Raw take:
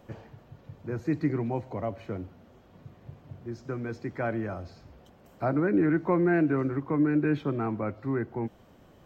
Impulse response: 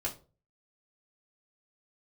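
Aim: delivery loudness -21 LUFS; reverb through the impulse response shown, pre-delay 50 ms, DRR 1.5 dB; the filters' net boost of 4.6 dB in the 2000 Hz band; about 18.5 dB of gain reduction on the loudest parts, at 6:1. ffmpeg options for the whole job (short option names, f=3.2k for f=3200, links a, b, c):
-filter_complex "[0:a]equalizer=f=2k:t=o:g=6.5,acompressor=threshold=-41dB:ratio=6,asplit=2[a][b];[1:a]atrim=start_sample=2205,adelay=50[c];[b][c]afir=irnorm=-1:irlink=0,volume=-4.5dB[d];[a][d]amix=inputs=2:normalize=0,volume=21.5dB"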